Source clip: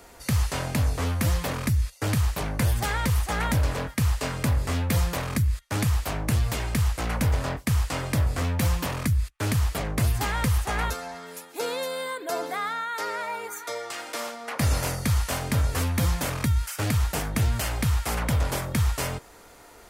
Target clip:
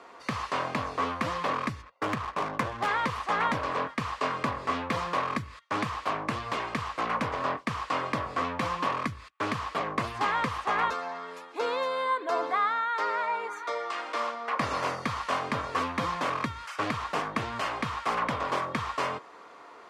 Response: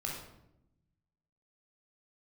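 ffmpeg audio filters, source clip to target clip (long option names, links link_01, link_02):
-filter_complex "[0:a]highpass=280,lowpass=3400,equalizer=frequency=1100:width_type=o:width=0.24:gain=13.5,asplit=3[link_01][link_02][link_03];[link_01]afade=type=out:start_time=1.81:duration=0.02[link_04];[link_02]adynamicsmooth=sensitivity=6.5:basefreq=1100,afade=type=in:start_time=1.81:duration=0.02,afade=type=out:start_time=2.86:duration=0.02[link_05];[link_03]afade=type=in:start_time=2.86:duration=0.02[link_06];[link_04][link_05][link_06]amix=inputs=3:normalize=0"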